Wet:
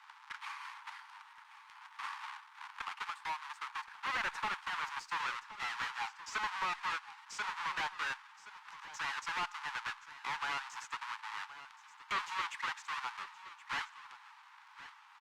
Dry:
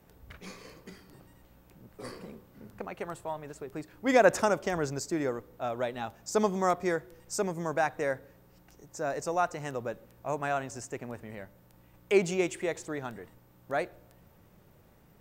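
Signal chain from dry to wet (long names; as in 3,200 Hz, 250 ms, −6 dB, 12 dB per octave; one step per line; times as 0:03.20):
each half-wave held at its own peak
Butterworth high-pass 860 Hz 96 dB per octave
downward compressor 2 to 1, threshold −46 dBFS, peak gain reduction 15 dB
hard clipping −37 dBFS, distortion −11 dB
head-to-tape spacing loss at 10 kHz 23 dB
single-tap delay 1,072 ms −15 dB
level +10.5 dB
Opus 48 kbit/s 48,000 Hz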